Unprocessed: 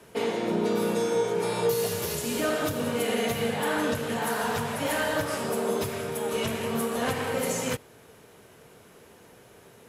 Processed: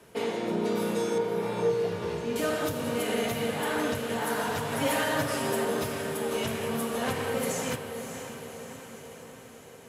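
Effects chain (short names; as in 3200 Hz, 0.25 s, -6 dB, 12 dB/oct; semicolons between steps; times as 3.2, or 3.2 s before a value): 1.18–2.36 Bessel low-pass 2200 Hz, order 2; 4.71–5.65 comb 7.5 ms, depth 98%; diffused feedback echo 0.576 s, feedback 60%, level -9 dB; gain -2.5 dB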